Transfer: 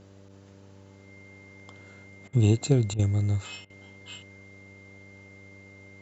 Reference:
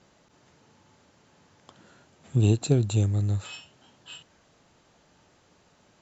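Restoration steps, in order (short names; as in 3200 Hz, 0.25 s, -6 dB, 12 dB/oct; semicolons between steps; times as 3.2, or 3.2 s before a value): de-hum 97.9 Hz, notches 6; notch 2100 Hz, Q 30; interpolate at 2.28/2.94/3.65, 48 ms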